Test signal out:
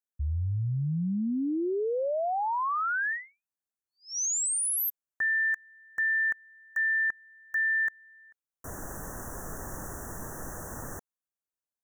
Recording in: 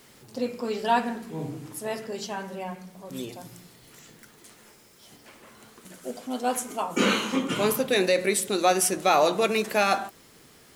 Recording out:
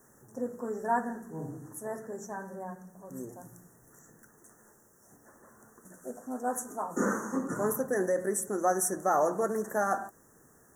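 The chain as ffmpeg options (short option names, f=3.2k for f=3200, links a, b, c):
-af "asuperstop=centerf=3300:order=20:qfactor=0.84,volume=-5.5dB"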